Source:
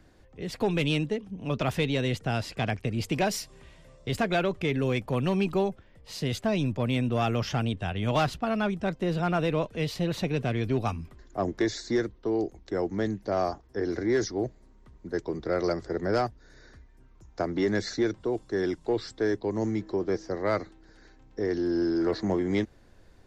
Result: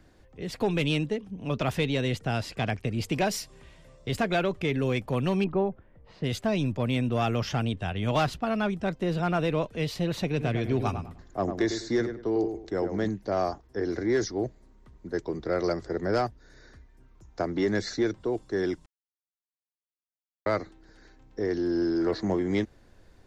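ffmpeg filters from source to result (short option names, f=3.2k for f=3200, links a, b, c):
-filter_complex "[0:a]asettb=1/sr,asplit=3[a][b][c];[a]atrim=end=5.444[d];[b]atrim=start=5.44:end=6.24,asetpts=PTS-STARTPTS,afade=t=in:d=0.004:c=qsin,afade=t=out:st=0.796:d=0.004:c=qsin,lowpass=1.5k[e];[c]atrim=start=6.236[f];[d][e]acrossfade=d=0.004:c1=hsin:c2=qsin[g];[g][f]acrossfade=d=0.004:c1=qsin:c2=hsin,asettb=1/sr,asplit=3[h][i][j];[h]atrim=end=10.274[k];[i]atrim=start=10.27:end=13.09,asetpts=PTS-STARTPTS,afade=t=in:d=0.004:c=qsin,afade=t=out:st=2.816:d=0.004:c=qsin,asplit=2[l][m];[m]adelay=101,lowpass=f=2k:p=1,volume=-7.5dB,asplit=2[n][o];[o]adelay=101,lowpass=f=2k:p=1,volume=0.29,asplit=2[p][q];[q]adelay=101,lowpass=f=2k:p=1,volume=0.29,asplit=2[r][s];[s]adelay=101,lowpass=f=2k:p=1,volume=0.29[t];[l][n][p][r][t]amix=inputs=5:normalize=0,atrim=end_sample=124362[u];[j]atrim=start=13.086[v];[k][u]acrossfade=d=0.004:c1=hsin:c2=qsin[w];[w][v]acrossfade=d=0.004:c1=qsin:c2=hsin,asplit=3[x][y][z];[x]atrim=end=18.86,asetpts=PTS-STARTPTS,afade=t=out:st=18.856:d=0.004:c=hsin[aa];[y]atrim=start=18.86:end=20.46,asetpts=PTS-STARTPTS,volume=0[ab];[z]atrim=start=20.46,asetpts=PTS-STARTPTS,afade=t=in:d=0.004:c=hsin[ac];[aa][ab][ac]concat=n=3:v=0:a=1"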